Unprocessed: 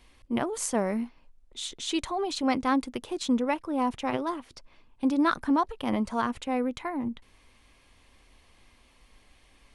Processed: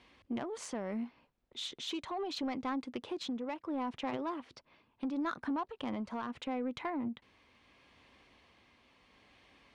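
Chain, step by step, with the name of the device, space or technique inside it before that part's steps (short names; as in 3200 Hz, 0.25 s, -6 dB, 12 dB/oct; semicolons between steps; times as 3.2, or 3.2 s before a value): AM radio (BPF 110–4200 Hz; compressor 5:1, threshold -31 dBFS, peak gain reduction 10.5 dB; soft clip -27 dBFS, distortion -19 dB; tremolo 0.74 Hz, depth 29%)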